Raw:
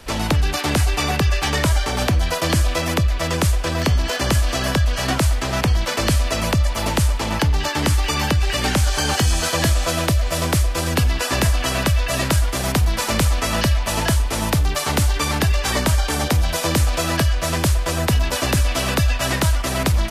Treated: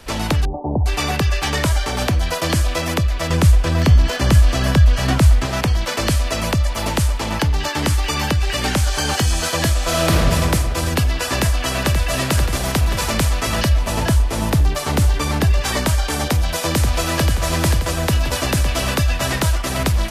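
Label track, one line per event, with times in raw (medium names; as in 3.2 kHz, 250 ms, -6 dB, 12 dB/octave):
0.450000	0.860000	steep low-pass 930 Hz 72 dB/octave
3.300000	5.460000	tone controls bass +7 dB, treble -2 dB
9.830000	10.270000	reverb throw, RT60 2.4 s, DRR -3.5 dB
11.310000	12.040000	echo throw 530 ms, feedback 75%, level -7.5 dB
13.690000	15.610000	tilt shelf lows +3 dB, about 780 Hz
16.300000	17.290000	echo throw 530 ms, feedback 50%, level -6 dB
17.950000	18.460000	echo throw 560 ms, feedback 85%, level -11 dB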